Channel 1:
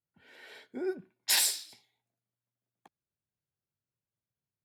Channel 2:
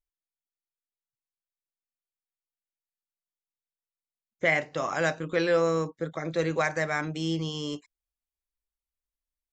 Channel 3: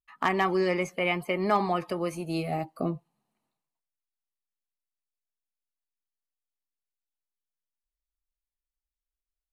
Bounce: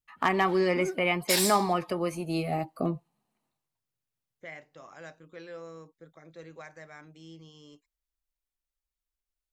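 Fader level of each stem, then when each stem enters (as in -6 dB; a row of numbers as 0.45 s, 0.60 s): -1.0 dB, -19.5 dB, +0.5 dB; 0.00 s, 0.00 s, 0.00 s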